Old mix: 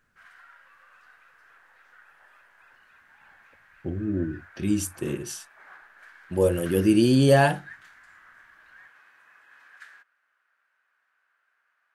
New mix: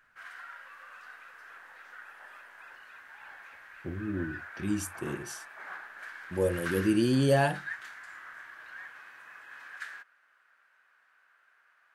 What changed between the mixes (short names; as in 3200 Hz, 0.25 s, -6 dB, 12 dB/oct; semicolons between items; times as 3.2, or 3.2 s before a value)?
speech -6.5 dB; background +6.5 dB